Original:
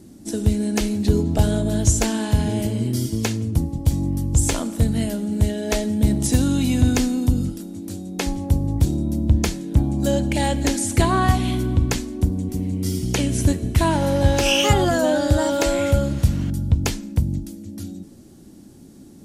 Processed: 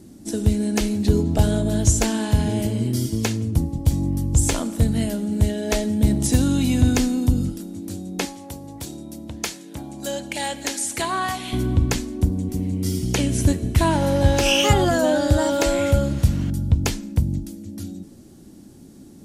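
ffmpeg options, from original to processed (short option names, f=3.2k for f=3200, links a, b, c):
-filter_complex "[0:a]asettb=1/sr,asplit=3[a][b][c];[a]atrim=end=8.254[d];[b]atrim=start=8.25:end=11.53,asetpts=PTS-STARTPTS,afade=t=in:d=0.004:c=qsin,afade=t=out:st=3.276:d=0.004:c=qsin,highpass=f=970:p=1[e];[c]atrim=start=11.526[f];[d][e]acrossfade=d=0.004:c1=hsin:c2=qsin[g];[g][f]acrossfade=d=0.004:c1=qsin:c2=hsin"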